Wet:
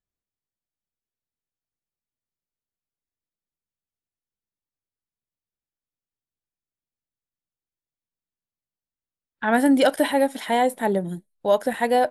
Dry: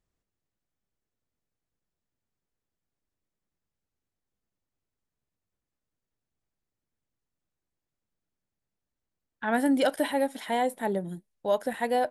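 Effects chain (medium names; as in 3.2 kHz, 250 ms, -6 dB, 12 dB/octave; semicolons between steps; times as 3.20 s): spectral noise reduction 17 dB; trim +6.5 dB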